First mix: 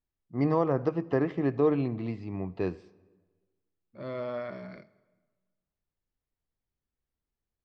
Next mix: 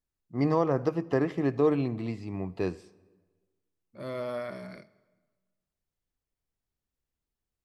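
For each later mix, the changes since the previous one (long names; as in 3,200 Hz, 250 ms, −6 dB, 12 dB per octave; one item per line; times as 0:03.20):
master: remove high-frequency loss of the air 160 metres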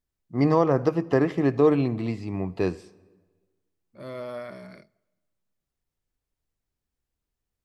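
first voice +5.0 dB
second voice: send −9.5 dB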